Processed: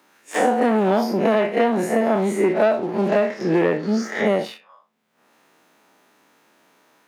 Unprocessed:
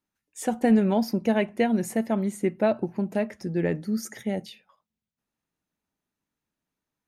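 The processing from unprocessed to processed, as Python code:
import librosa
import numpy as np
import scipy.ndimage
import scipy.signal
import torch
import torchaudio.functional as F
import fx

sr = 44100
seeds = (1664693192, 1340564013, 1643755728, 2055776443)

y = fx.spec_blur(x, sr, span_ms=98.0)
y = fx.lowpass(y, sr, hz=6300.0, slope=24, at=(3.08, 4.26))
y = fx.leveller(y, sr, passes=2)
y = scipy.signal.sosfilt(scipy.signal.butter(2, 410.0, 'highpass', fs=sr, output='sos'), y)
y = fx.high_shelf(y, sr, hz=3600.0, db=-10.5)
y = fx.band_squash(y, sr, depth_pct=100)
y = F.gain(torch.from_numpy(y), 8.5).numpy()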